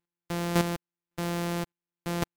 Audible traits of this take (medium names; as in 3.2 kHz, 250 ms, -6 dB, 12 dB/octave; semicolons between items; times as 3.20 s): a buzz of ramps at a fixed pitch in blocks of 256 samples; chopped level 1.8 Hz, depth 65%, duty 10%; MP3